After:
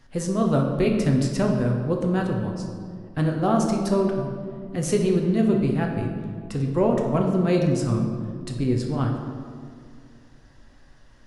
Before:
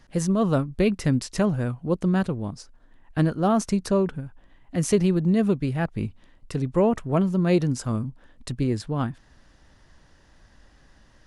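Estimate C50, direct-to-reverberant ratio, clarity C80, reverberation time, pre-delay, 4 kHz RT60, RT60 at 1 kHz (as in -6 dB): 4.0 dB, 1.0 dB, 5.5 dB, 2.2 s, 7 ms, 1.2 s, 1.9 s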